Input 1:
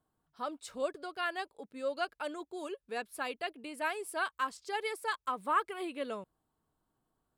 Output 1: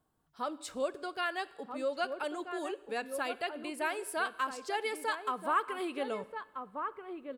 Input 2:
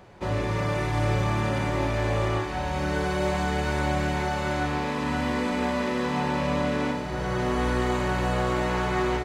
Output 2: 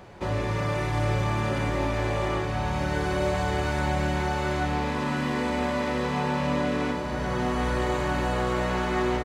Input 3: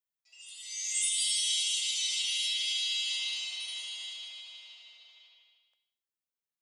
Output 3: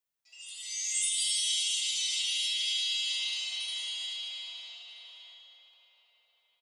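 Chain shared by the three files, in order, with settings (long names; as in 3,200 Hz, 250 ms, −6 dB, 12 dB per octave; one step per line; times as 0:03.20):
slap from a distant wall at 220 metres, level −7 dB
coupled-rooms reverb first 0.9 s, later 2.8 s, DRR 17 dB
in parallel at −0.5 dB: downward compressor, threshold −37 dBFS
on the sum: level −2.5 dB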